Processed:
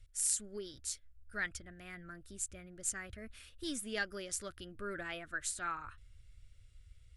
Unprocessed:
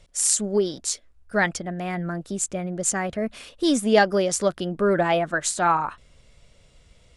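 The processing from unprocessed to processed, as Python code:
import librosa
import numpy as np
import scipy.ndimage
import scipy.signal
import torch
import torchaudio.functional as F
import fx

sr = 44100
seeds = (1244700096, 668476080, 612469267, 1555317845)

y = fx.curve_eq(x, sr, hz=(110.0, 160.0, 310.0, 880.0, 1400.0, 6600.0, 12000.0), db=(0, -23, -18, -28, -11, -13, -4))
y = y * librosa.db_to_amplitude(-2.0)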